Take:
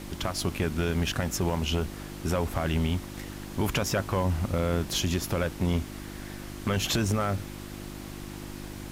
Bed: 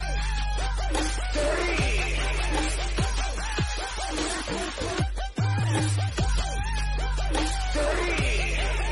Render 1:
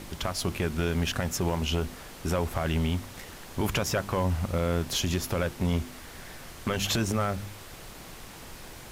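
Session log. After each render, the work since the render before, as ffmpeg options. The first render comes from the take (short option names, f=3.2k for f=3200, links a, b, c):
-af "bandreject=f=50:t=h:w=4,bandreject=f=100:t=h:w=4,bandreject=f=150:t=h:w=4,bandreject=f=200:t=h:w=4,bandreject=f=250:t=h:w=4,bandreject=f=300:t=h:w=4,bandreject=f=350:t=h:w=4"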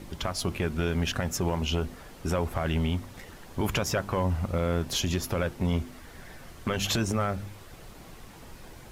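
-af "afftdn=nr=7:nf=-45"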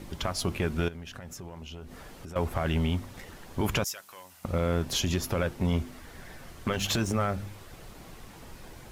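-filter_complex "[0:a]asettb=1/sr,asplit=3[a][b][c];[a]atrim=end=0.884[d];[b]atrim=start=0.88:end=2.36,asetpts=PTS-STARTPTS,afade=t=in:d=0.004:c=qsin,afade=t=out:st=1.476:d=0.004:c=qsin,acompressor=threshold=-39dB:ratio=8:attack=3.2:release=140:knee=1:detection=peak[e];[c]atrim=start=2.356[f];[d][e]acrossfade=d=0.004:c1=hsin:c2=qsin[g];[g][f]acrossfade=d=0.004:c1=qsin:c2=hsin,asettb=1/sr,asplit=3[h][i][j];[h]atrim=end=3.844[k];[i]atrim=start=3.84:end=4.45,asetpts=PTS-STARTPTS,afade=t=in:d=0.004:c=qsin,afade=t=out:st=0.606:d=0.004:c=qsin,aderivative[l];[j]atrim=start=4.446[m];[k][l]acrossfade=d=0.004:c1=hsin:c2=qsin[n];[n][m]acrossfade=d=0.004:c1=qsin:c2=hsin,asettb=1/sr,asplit=3[o][p][q];[o]atrim=end=6.724[r];[p]atrim=start=6.72:end=7.12,asetpts=PTS-STARTPTS,afade=t=in:d=0.004:c=qsin,afade=t=out:st=0.396:d=0.004:c=qsin,aeval=exprs='sgn(val(0))*max(abs(val(0))-0.00531,0)':c=same[s];[q]atrim=start=7.116[t];[r][s]acrossfade=d=0.004:c1=hsin:c2=qsin[u];[u][t]acrossfade=d=0.004:c1=qsin:c2=hsin"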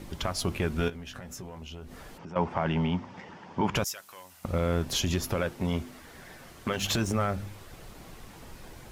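-filter_complex "[0:a]asettb=1/sr,asplit=3[a][b][c];[a]atrim=end=0.774[d];[b]atrim=start=0.77:end=1.58,asetpts=PTS-STARTPTS,afade=t=in:d=0.004:c=qsin,afade=t=out:st=0.806:d=0.004:c=qsin,asplit=2[e][f];[f]adelay=16,volume=-6.5dB[g];[e][g]amix=inputs=2:normalize=0,atrim=end_sample=35721[h];[c]atrim=start=1.576[i];[d][h]acrossfade=d=0.004:c1=hsin:c2=qsin[j];[j][i]acrossfade=d=0.004:c1=qsin:c2=hsin,asplit=3[k][l][m];[k]afade=t=out:st=2.17:d=0.02[n];[l]highpass=140,equalizer=f=180:t=q:w=4:g=7,equalizer=f=910:t=q:w=4:g=9,equalizer=f=4k:t=q:w=4:g=-10,lowpass=f=5.1k:w=0.5412,lowpass=f=5.1k:w=1.3066,afade=t=in:st=2.17:d=0.02,afade=t=out:st=3.74:d=0.02[o];[m]afade=t=in:st=3.74:d=0.02[p];[n][o][p]amix=inputs=3:normalize=0,asettb=1/sr,asplit=3[q][r][s];[q]atrim=end=5.364[t];[r]atrim=start=5.36:end=6.83,asetpts=PTS-STARTPTS,afade=t=in:d=0.004:c=qsin,afade=t=out:st=1.466:d=0.004:c=qsin,lowshelf=f=82:g=-11[u];[s]atrim=start=6.826[v];[t][u]acrossfade=d=0.004:c1=hsin:c2=qsin[w];[w][v]acrossfade=d=0.004:c1=qsin:c2=hsin"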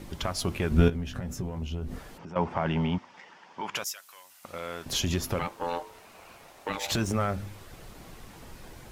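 -filter_complex "[0:a]asettb=1/sr,asplit=3[a][b][c];[a]atrim=end=0.714[d];[b]atrim=start=0.71:end=1.99,asetpts=PTS-STARTPTS,afade=t=in:d=0.004:c=qsin,afade=t=out:st=1.276:d=0.004:c=qsin,lowshelf=f=390:g=11.5[e];[c]atrim=start=1.986[f];[d][e]acrossfade=d=0.004:c1=hsin:c2=qsin[g];[g][f]acrossfade=d=0.004:c1=qsin:c2=hsin,asettb=1/sr,asplit=3[h][i][j];[h]atrim=end=2.984[k];[i]atrim=start=2.98:end=4.86,asetpts=PTS-STARTPTS,afade=t=in:d=0.004:c=qsin,afade=t=out:st=1.876:d=0.004:c=qsin,highpass=f=1.3k:p=1[l];[j]atrim=start=4.856[m];[k][l]acrossfade=d=0.004:c1=hsin:c2=qsin[n];[n][m]acrossfade=d=0.004:c1=qsin:c2=hsin,asettb=1/sr,asplit=3[o][p][q];[o]atrim=end=5.394[r];[p]atrim=start=5.39:end=6.92,asetpts=PTS-STARTPTS,afade=t=in:d=0.004:c=qsin,afade=t=out:st=1.526:d=0.004:c=qsin,aeval=exprs='val(0)*sin(2*PI*690*n/s)':c=same[s];[q]atrim=start=6.916[t];[r][s]acrossfade=d=0.004:c1=hsin:c2=qsin[u];[u][t]acrossfade=d=0.004:c1=qsin:c2=hsin"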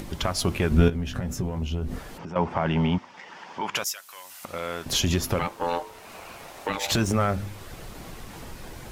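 -filter_complex "[0:a]acompressor=mode=upward:threshold=-40dB:ratio=2.5,asplit=2[a][b];[b]alimiter=limit=-19.5dB:level=0:latency=1:release=239,volume=-2dB[c];[a][c]amix=inputs=2:normalize=0"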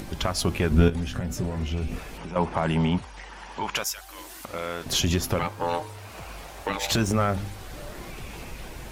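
-filter_complex "[1:a]volume=-18dB[a];[0:a][a]amix=inputs=2:normalize=0"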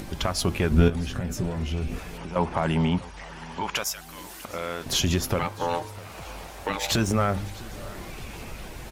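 -af "aecho=1:1:650|1300|1950:0.0891|0.041|0.0189"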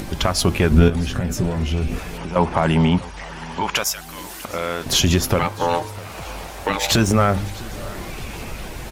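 -af "volume=7dB,alimiter=limit=-3dB:level=0:latency=1"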